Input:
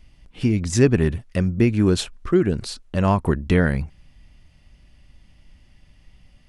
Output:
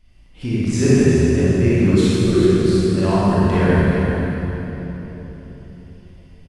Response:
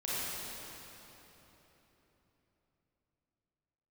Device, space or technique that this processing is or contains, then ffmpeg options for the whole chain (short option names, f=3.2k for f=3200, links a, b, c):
cave: -filter_complex "[0:a]aecho=1:1:391:0.316[a];[1:a]atrim=start_sample=2205[b];[a][b]afir=irnorm=-1:irlink=0,volume=-3dB"